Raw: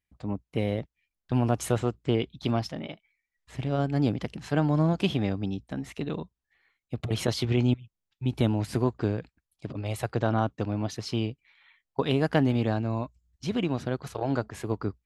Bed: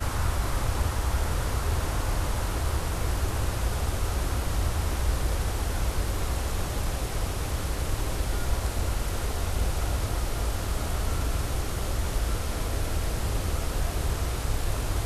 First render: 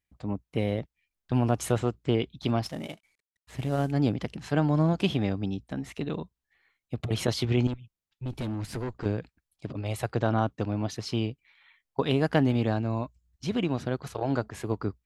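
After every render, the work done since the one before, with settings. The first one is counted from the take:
0:02.63–0:03.92: variable-slope delta modulation 64 kbit/s
0:07.67–0:09.06: tube saturation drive 28 dB, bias 0.35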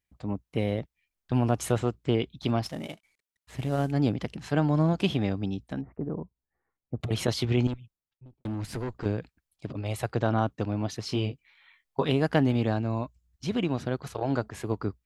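0:05.81–0:07.01: Gaussian smoothing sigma 7.8 samples
0:07.73–0:08.45: fade out and dull
0:11.07–0:12.11: double-tracking delay 20 ms −5.5 dB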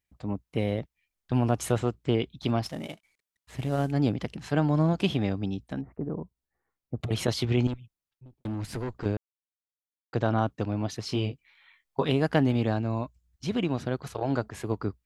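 0:09.17–0:10.13: silence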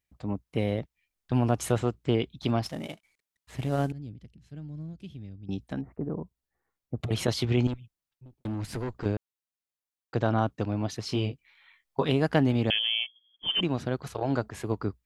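0:03.92–0:05.49: guitar amp tone stack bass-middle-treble 10-0-1
0:12.70–0:13.61: voice inversion scrambler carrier 3,300 Hz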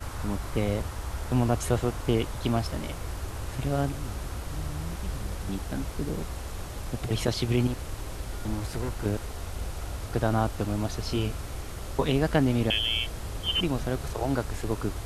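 mix in bed −7.5 dB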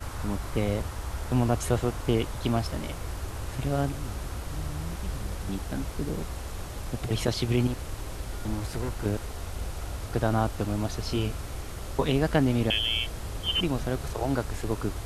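no processing that can be heard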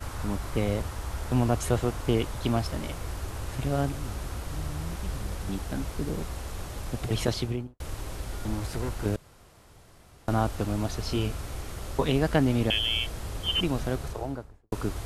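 0:07.29–0:07.80: fade out and dull
0:09.16–0:10.28: fill with room tone
0:13.87–0:14.72: fade out and dull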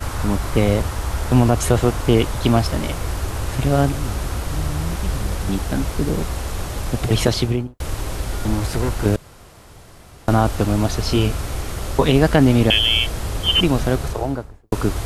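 level +10.5 dB
brickwall limiter −2 dBFS, peak gain reduction 3 dB

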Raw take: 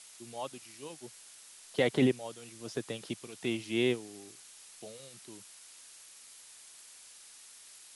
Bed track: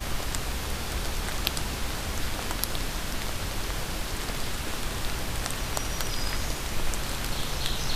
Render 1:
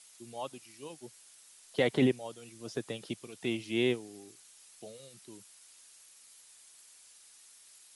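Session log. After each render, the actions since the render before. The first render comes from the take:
broadband denoise 6 dB, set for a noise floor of −54 dBFS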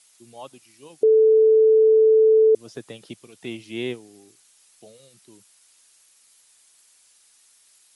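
0:01.03–0:02.55: beep over 439 Hz −11.5 dBFS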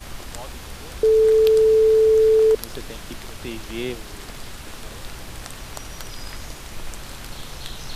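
mix in bed track −5 dB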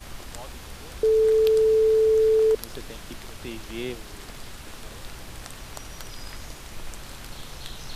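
level −4 dB

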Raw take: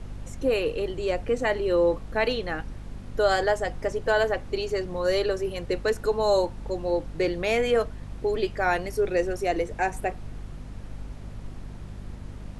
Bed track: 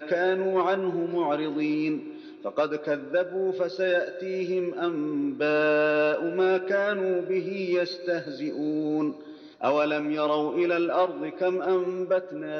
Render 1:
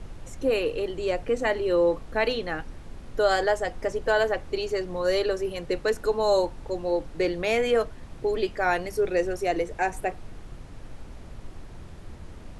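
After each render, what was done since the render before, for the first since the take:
hum removal 50 Hz, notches 5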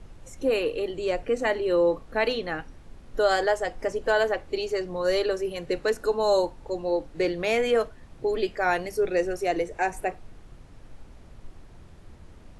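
noise reduction from a noise print 6 dB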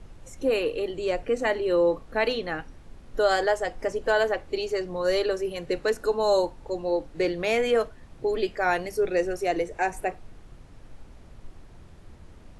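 no processing that can be heard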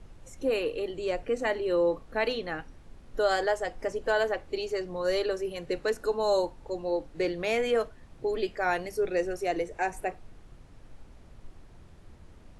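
level −3.5 dB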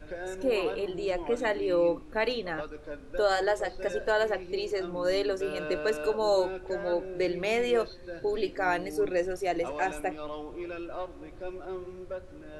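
mix in bed track −13.5 dB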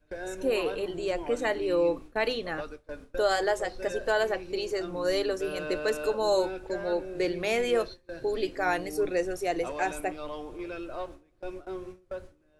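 noise gate with hold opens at −31 dBFS
high-shelf EQ 6,500 Hz +7 dB

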